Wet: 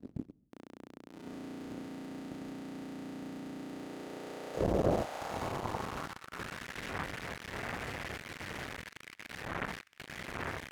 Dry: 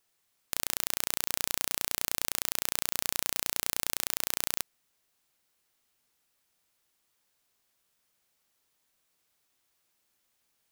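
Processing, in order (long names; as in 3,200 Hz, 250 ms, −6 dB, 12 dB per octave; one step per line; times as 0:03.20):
wind on the microphone 82 Hz −49 dBFS
reversed playback
downward compressor 10 to 1, threshold −42 dBFS, peak gain reduction 19 dB
reversed playback
soft clipping −22 dBFS, distortion −15 dB
feedback delay with all-pass diffusion 755 ms, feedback 41%, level −7.5 dB
in parallel at −5.5 dB: fuzz pedal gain 51 dB, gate −57 dBFS
on the sum: band-pass filter sweep 270 Hz → 1,900 Hz, 0:03.55–0:06.87
level +11 dB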